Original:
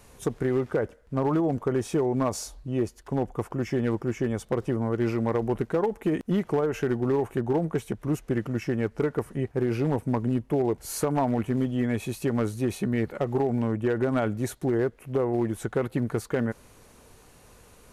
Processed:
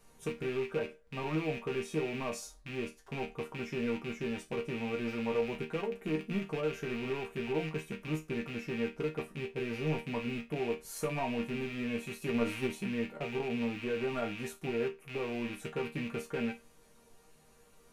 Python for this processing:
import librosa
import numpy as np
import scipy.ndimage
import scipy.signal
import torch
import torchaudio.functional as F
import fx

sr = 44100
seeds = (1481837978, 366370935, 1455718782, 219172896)

y = fx.rattle_buzz(x, sr, strikes_db=-34.0, level_db=-22.0)
y = fx.resonator_bank(y, sr, root=51, chord='major', decay_s=0.23)
y = fx.transient(y, sr, attack_db=8, sustain_db=4, at=(12.27, 12.7), fade=0.02)
y = y * 10.0 ** (4.5 / 20.0)